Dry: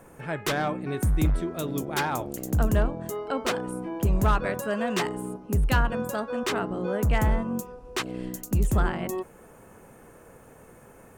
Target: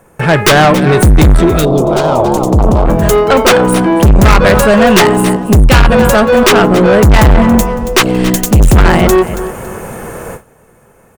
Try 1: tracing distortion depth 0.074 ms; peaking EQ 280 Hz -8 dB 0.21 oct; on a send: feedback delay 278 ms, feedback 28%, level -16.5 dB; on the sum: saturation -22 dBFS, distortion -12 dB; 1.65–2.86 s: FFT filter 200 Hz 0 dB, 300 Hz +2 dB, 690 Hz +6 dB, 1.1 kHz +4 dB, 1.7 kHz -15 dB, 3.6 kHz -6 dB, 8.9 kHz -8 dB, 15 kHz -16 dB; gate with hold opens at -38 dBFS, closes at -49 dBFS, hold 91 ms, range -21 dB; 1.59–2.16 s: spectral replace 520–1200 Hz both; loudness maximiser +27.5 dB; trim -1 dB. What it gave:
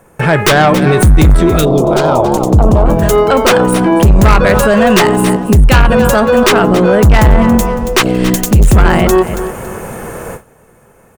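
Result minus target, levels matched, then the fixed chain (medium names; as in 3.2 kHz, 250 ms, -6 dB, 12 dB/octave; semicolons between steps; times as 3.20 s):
saturation: distortion -6 dB
tracing distortion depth 0.074 ms; peaking EQ 280 Hz -8 dB 0.21 oct; on a send: feedback delay 278 ms, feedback 28%, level -16.5 dB; on the sum: saturation -29 dBFS, distortion -7 dB; 1.65–2.86 s: FFT filter 200 Hz 0 dB, 300 Hz +2 dB, 690 Hz +6 dB, 1.1 kHz +4 dB, 1.7 kHz -15 dB, 3.6 kHz -6 dB, 8.9 kHz -8 dB, 15 kHz -16 dB; gate with hold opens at -38 dBFS, closes at -49 dBFS, hold 91 ms, range -21 dB; 1.59–2.16 s: spectral replace 520–1200 Hz both; loudness maximiser +27.5 dB; trim -1 dB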